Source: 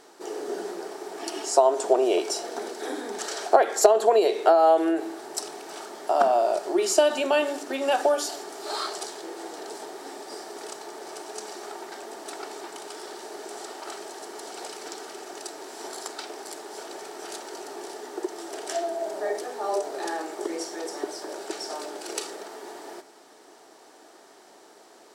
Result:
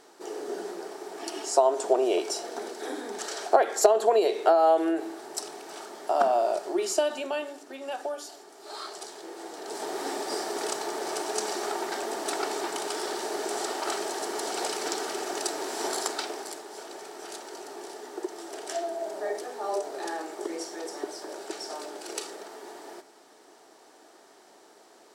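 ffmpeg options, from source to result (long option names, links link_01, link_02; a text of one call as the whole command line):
ffmpeg -i in.wav -af "volume=16dB,afade=type=out:start_time=6.49:duration=1.07:silence=0.354813,afade=type=in:start_time=8.56:duration=1.07:silence=0.334965,afade=type=in:start_time=9.63:duration=0.36:silence=0.354813,afade=type=out:start_time=15.92:duration=0.72:silence=0.316228" out.wav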